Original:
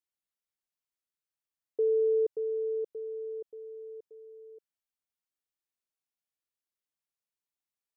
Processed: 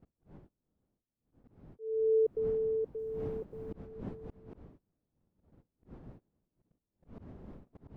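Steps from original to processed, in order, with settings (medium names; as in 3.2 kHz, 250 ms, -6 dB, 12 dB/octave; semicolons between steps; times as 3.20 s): 2.98–3.86 s: spectral peaks clipped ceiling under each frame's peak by 12 dB; wind noise 260 Hz -44 dBFS; gate -49 dBFS, range -23 dB; slow attack 372 ms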